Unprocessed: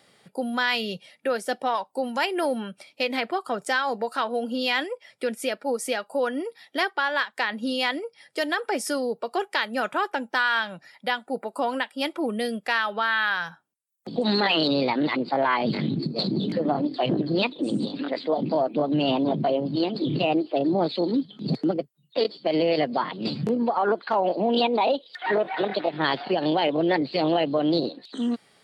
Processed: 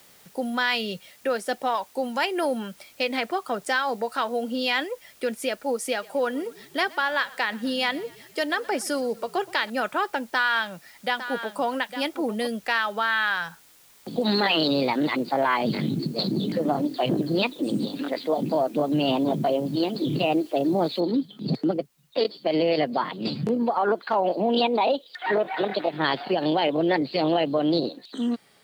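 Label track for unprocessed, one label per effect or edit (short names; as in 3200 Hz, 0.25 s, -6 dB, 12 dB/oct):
5.900000	9.700000	frequency-shifting echo 0.121 s, feedback 58%, per repeat -35 Hz, level -22 dB
10.280000	12.470000	echo 0.856 s -11 dB
21.000000	21.000000	noise floor step -55 dB -70 dB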